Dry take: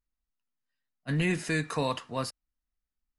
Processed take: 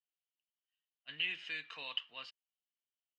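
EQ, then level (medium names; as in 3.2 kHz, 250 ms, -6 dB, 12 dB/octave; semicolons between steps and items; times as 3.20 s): band-pass filter 3 kHz, Q 8.3; distance through air 140 m; +9.0 dB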